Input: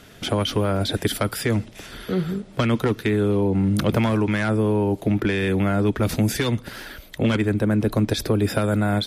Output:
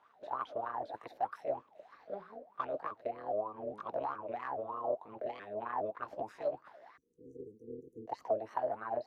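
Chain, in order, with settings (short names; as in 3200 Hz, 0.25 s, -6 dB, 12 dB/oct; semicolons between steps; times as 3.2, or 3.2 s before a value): repeated pitch sweeps +4.5 st, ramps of 0.415 s; AM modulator 210 Hz, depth 80%; wah 3.2 Hz 590–1200 Hz, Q 15; spectral delete 6.97–8.08, 500–5700 Hz; gain +6.5 dB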